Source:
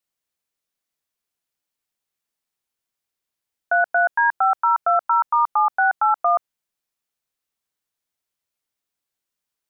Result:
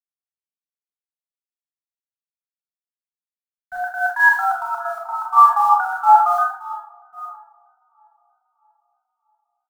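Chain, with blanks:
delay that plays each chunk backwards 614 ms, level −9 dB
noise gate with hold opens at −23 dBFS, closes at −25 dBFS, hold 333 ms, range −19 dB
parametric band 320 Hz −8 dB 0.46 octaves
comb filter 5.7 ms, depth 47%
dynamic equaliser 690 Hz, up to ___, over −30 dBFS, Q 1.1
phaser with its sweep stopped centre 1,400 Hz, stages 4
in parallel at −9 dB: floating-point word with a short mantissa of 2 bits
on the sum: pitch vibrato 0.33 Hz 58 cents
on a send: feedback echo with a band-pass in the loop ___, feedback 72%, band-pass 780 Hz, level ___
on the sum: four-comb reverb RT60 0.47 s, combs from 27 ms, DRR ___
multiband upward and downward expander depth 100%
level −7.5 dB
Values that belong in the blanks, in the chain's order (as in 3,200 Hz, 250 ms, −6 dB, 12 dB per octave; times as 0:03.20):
+7 dB, 638 ms, −17.5 dB, −2 dB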